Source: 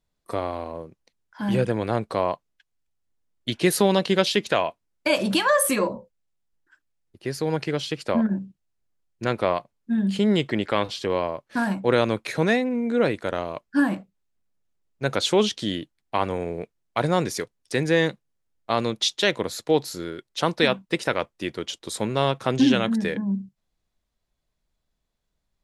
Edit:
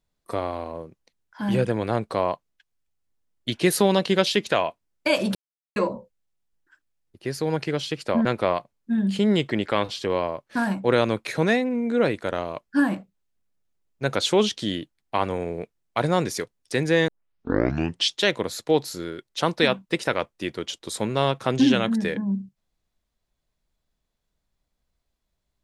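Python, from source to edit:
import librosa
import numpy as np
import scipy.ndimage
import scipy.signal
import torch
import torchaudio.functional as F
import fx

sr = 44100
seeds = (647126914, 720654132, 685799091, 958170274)

y = fx.edit(x, sr, fx.silence(start_s=5.35, length_s=0.41),
    fx.cut(start_s=8.25, length_s=1.0),
    fx.tape_start(start_s=18.08, length_s=1.08), tone=tone)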